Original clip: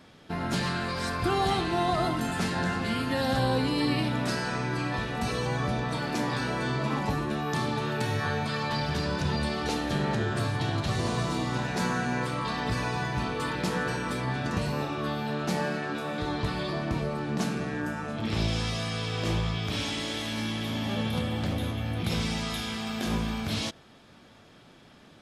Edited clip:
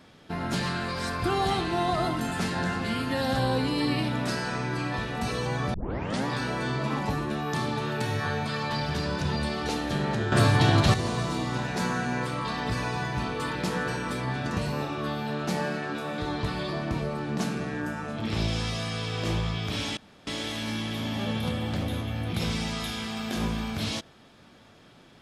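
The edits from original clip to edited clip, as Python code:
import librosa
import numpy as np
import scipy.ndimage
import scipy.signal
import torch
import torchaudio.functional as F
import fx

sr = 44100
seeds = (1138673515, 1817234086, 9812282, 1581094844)

y = fx.edit(x, sr, fx.tape_start(start_s=5.74, length_s=0.52),
    fx.clip_gain(start_s=10.32, length_s=0.62, db=8.5),
    fx.insert_room_tone(at_s=19.97, length_s=0.3), tone=tone)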